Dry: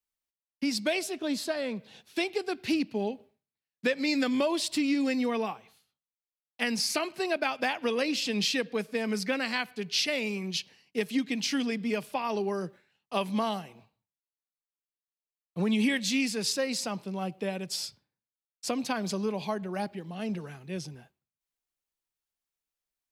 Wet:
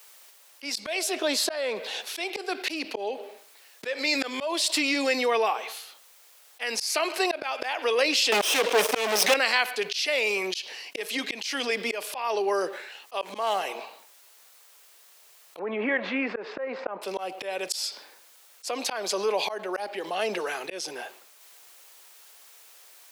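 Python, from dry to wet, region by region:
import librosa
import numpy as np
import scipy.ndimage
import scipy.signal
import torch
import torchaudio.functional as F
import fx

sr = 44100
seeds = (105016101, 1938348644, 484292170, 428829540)

y = fx.chain(x, sr, fx.lower_of_two(delay_ms=0.33),
    fx.leveller(passes=5), at=(8.32, 9.34))
y = fx.chain(y, sr, fx.median_filter(points=9),
    fx.auto_swell(attack_ms=241.0), at=(13.21, 13.61))
y = fx.chain(y, sr, fx.law_mismatch(coded='A'),
    fx.lowpass(hz=1800.0, slope=24),
    fx.low_shelf(hz=290.0, db=5.5), at=(15.59, 17.02))
y = scipy.signal.sosfilt(scipy.signal.butter(4, 430.0, 'highpass', fs=sr, output='sos'), y)
y = fx.auto_swell(y, sr, attack_ms=378.0)
y = fx.env_flatten(y, sr, amount_pct=50)
y = F.gain(torch.from_numpy(y), 3.5).numpy()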